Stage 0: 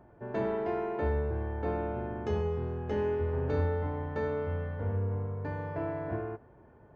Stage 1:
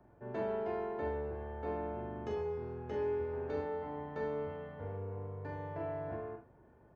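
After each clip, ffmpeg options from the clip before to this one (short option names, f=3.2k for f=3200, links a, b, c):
-filter_complex "[0:a]acrossover=split=270|730|2100[a][b][c][d];[a]acompressor=threshold=-41dB:ratio=4[e];[e][b][c][d]amix=inputs=4:normalize=0,aecho=1:1:41|74:0.531|0.224,volume=-6.5dB"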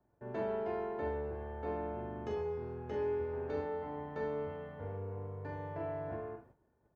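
-af "agate=range=-13dB:threshold=-59dB:ratio=16:detection=peak"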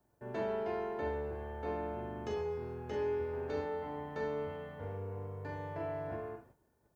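-af "highshelf=f=3.1k:g=10.5"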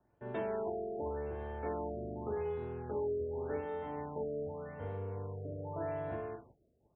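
-af "alimiter=level_in=5dB:limit=-24dB:level=0:latency=1:release=426,volume=-5dB,afftfilt=real='re*lt(b*sr/1024,690*pow(4000/690,0.5+0.5*sin(2*PI*0.86*pts/sr)))':imag='im*lt(b*sr/1024,690*pow(4000/690,0.5+0.5*sin(2*PI*0.86*pts/sr)))':win_size=1024:overlap=0.75,volume=1dB"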